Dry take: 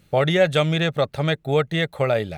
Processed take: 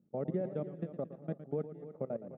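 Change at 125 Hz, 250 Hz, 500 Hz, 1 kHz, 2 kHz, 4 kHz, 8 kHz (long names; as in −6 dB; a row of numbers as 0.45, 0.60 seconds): −19.0 dB, −14.5 dB, −17.5 dB, −24.0 dB, −37.5 dB, below −40 dB, below −35 dB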